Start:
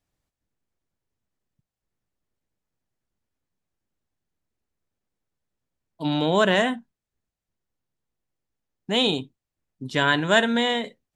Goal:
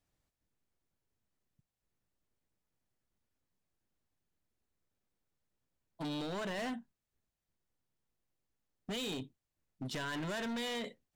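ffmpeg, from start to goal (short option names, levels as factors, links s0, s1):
-af "alimiter=limit=0.188:level=0:latency=1:release=29,acompressor=threshold=0.0316:ratio=3,asoftclip=type=hard:threshold=0.0211,volume=0.75"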